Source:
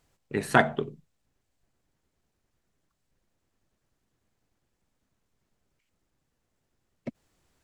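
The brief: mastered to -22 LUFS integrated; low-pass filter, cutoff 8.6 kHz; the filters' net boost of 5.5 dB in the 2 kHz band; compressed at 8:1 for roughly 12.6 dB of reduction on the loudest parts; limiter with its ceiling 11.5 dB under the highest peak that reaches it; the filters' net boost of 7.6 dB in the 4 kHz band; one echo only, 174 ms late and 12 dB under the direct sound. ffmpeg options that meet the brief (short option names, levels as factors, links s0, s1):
-af "lowpass=8600,equalizer=f=2000:t=o:g=6,equalizer=f=4000:t=o:g=7.5,acompressor=threshold=0.0501:ratio=8,alimiter=limit=0.1:level=0:latency=1,aecho=1:1:174:0.251,volume=7.08"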